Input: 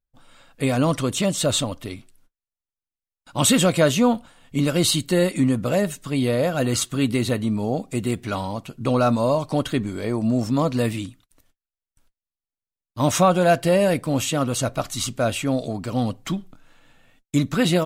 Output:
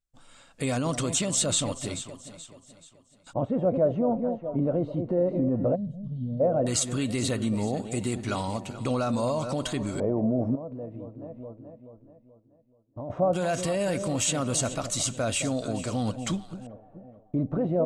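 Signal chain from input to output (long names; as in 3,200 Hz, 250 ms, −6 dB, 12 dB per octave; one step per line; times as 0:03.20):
delay that swaps between a low-pass and a high-pass 215 ms, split 810 Hz, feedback 63%, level −11.5 dB
brickwall limiter −16.5 dBFS, peak gain reduction 10 dB
0:05.75–0:06.40: gain on a spectral selection 250–2,900 Hz −26 dB
0:10.55–0:13.10: downward compressor 8 to 1, threshold −34 dBFS, peak gain reduction 13 dB
auto-filter low-pass square 0.15 Hz 620–7,900 Hz
level −3 dB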